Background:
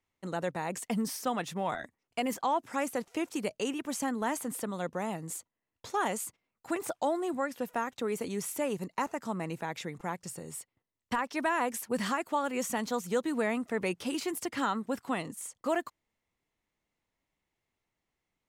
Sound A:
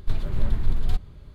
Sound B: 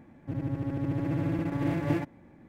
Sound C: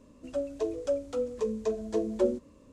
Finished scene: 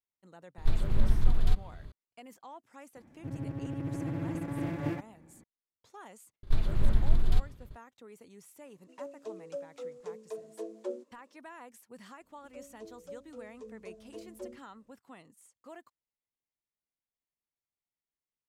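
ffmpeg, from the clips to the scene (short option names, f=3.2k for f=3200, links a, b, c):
-filter_complex "[1:a]asplit=2[a][b];[3:a]asplit=2[c][d];[0:a]volume=-19dB[e];[b]agate=range=-33dB:threshold=-40dB:ratio=3:release=100:detection=peak[f];[c]highpass=f=300:w=0.5412,highpass=f=300:w=1.3066[g];[a]atrim=end=1.34,asetpts=PTS-STARTPTS,volume=-2dB,afade=t=in:d=0.004:c=hsin,afade=t=out:st=1.336:d=0.004:c=hsin,adelay=580[h];[2:a]atrim=end=2.48,asetpts=PTS-STARTPTS,volume=-5.5dB,afade=t=in:d=0.004:c=hsin,afade=t=out:st=2.476:d=0.004:c=hsin,adelay=2960[i];[f]atrim=end=1.34,asetpts=PTS-STARTPTS,volume=-2dB,afade=t=in:d=0.004:c=hsin,afade=t=out:st=1.336:d=0.004:c=hsin,adelay=6430[j];[g]atrim=end=2.72,asetpts=PTS-STARTPTS,volume=-10.5dB,afade=t=in:d=0.004:c=hsin,afade=t=out:st=2.716:d=0.004:c=hsin,adelay=8650[k];[d]atrim=end=2.72,asetpts=PTS-STARTPTS,volume=-17.5dB,afade=t=in:d=0.004:c=hsin,afade=t=out:st=2.716:d=0.004:c=hsin,adelay=538020S[l];[e][h][i][j][k][l]amix=inputs=6:normalize=0"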